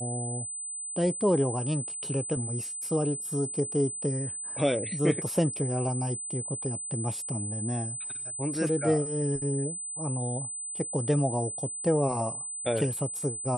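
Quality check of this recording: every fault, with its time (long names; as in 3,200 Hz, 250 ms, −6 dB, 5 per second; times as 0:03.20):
whistle 8,100 Hz −34 dBFS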